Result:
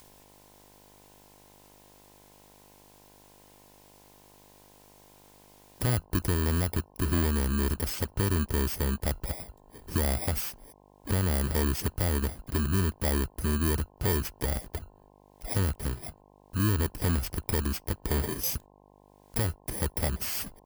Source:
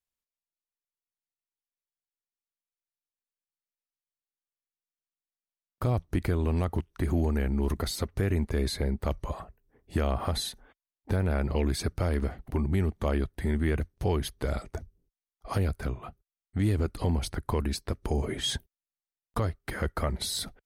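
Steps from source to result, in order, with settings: bit-reversed sample order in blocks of 32 samples; upward compressor, threshold -31 dBFS; mains buzz 50 Hz, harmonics 21, -59 dBFS -1 dB/octave

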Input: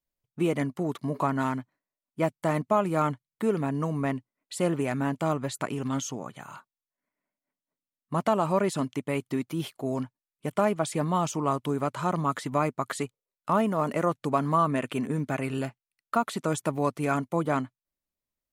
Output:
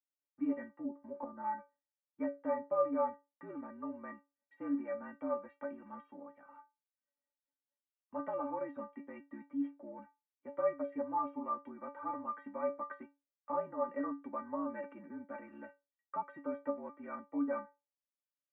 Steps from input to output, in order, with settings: mistuned SSB -50 Hz 260–2000 Hz; inharmonic resonator 280 Hz, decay 0.26 s, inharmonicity 0.008; 0.74–1.44 s: low-pass that closes with the level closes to 540 Hz, closed at -38.5 dBFS; trim +2 dB

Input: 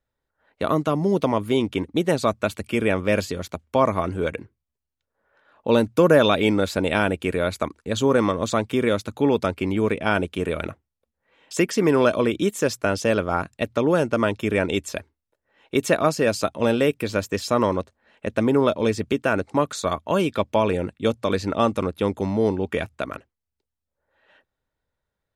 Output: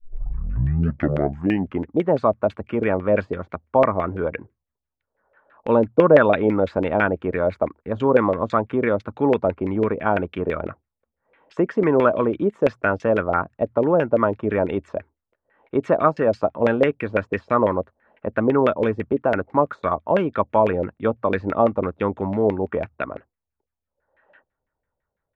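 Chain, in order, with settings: tape start-up on the opening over 1.92 s; LFO low-pass saw down 6 Hz 510–2300 Hz; trim -1 dB

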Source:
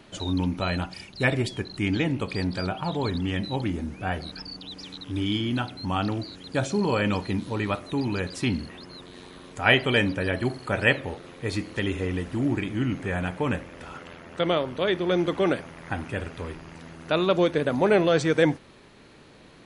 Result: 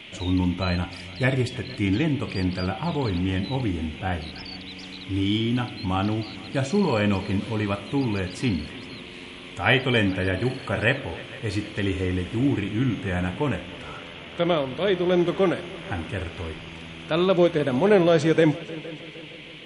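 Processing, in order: harmonic-percussive split harmonic +6 dB; on a send: multi-head delay 154 ms, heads second and third, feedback 49%, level -21 dB; on the sum: band noise 2–3.4 kHz -42 dBFS; trim -2.5 dB

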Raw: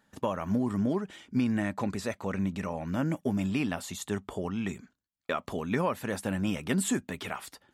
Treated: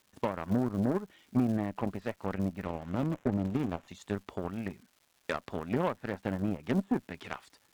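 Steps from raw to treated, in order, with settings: low-pass that closes with the level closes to 1 kHz, closed at -26 dBFS; crackle 470 per s -43 dBFS; Chebyshev shaper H 7 -20 dB, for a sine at -15.5 dBFS; 2.65–3.88 s: sliding maximum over 9 samples

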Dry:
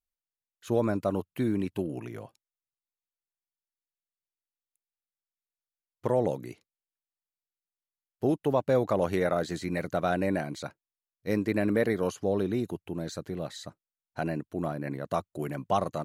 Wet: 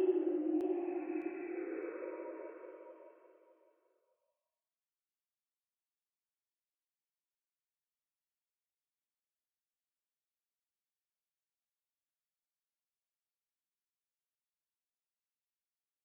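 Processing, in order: formants replaced by sine waves; Paulstretch 5.2×, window 0.25 s, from 1.81 s; feedback delay 609 ms, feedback 23%, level -7 dB; trim -1.5 dB

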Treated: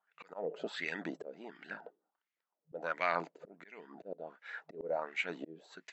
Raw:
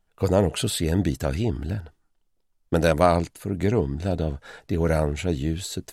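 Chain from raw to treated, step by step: FFT band-pass 160–7800 Hz; wah-wah 1.4 Hz 450–2200 Hz, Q 3.8; slow attack 491 ms; trim +6 dB

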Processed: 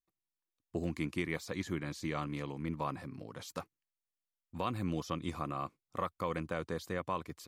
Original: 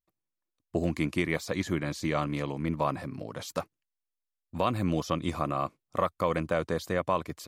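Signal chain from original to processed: peaking EQ 620 Hz -7 dB 0.3 oct; trim -7 dB

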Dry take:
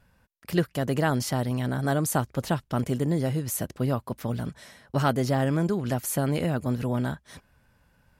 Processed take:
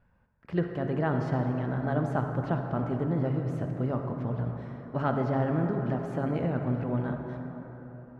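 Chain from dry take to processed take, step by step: low-pass 1.7 kHz 12 dB/octave; de-hum 69.62 Hz, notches 28; reverberation RT60 4.2 s, pre-delay 43 ms, DRR 4 dB; trim -3.5 dB

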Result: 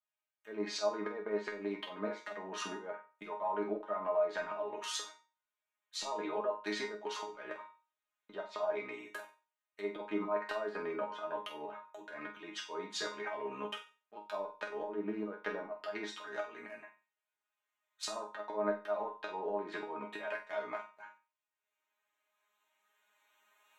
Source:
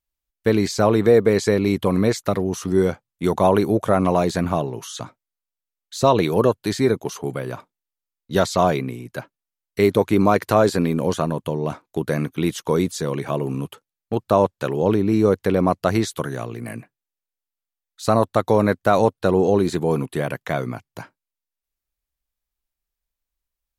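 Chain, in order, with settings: local Wiener filter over 9 samples; recorder AGC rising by 9.3 dB/s; low-pass that closes with the level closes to 1.2 kHz, closed at -14 dBFS; high-pass 760 Hz 12 dB/octave; slow attack 263 ms; compression 6:1, threshold -33 dBFS, peak gain reduction 12.5 dB; chord resonator G#3 fifth, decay 0.28 s; on a send: flutter echo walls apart 8.1 m, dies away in 0.31 s; on the sum: trim +15.5 dB

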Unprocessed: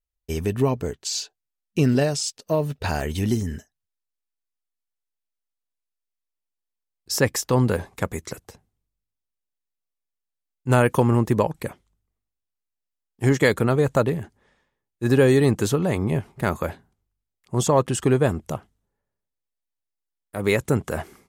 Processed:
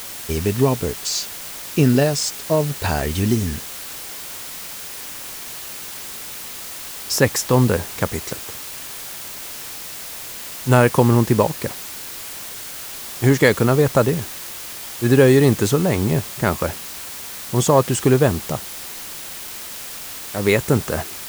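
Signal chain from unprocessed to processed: added noise white -37 dBFS; trim +4 dB

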